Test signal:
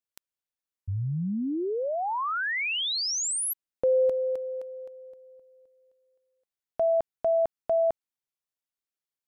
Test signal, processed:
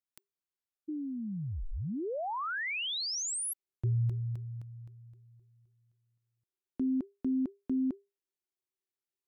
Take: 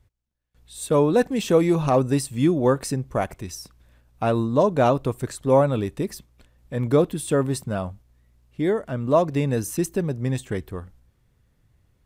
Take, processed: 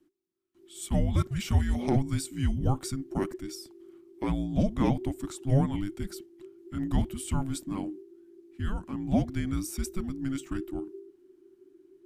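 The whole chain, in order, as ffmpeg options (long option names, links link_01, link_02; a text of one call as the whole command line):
ffmpeg -i in.wav -af "asubboost=boost=8:cutoff=58,afreqshift=-400,volume=-6dB" out.wav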